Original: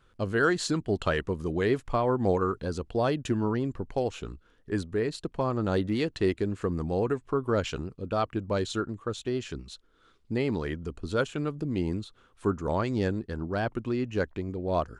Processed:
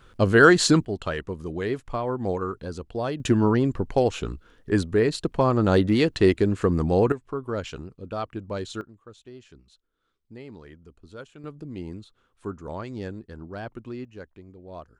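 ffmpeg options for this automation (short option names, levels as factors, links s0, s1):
-af "asetnsamples=n=441:p=0,asendcmd='0.85 volume volume -2dB;3.2 volume volume 7.5dB;7.12 volume volume -3dB;8.81 volume volume -14dB;11.44 volume volume -6.5dB;14.05 volume volume -13dB',volume=3.16"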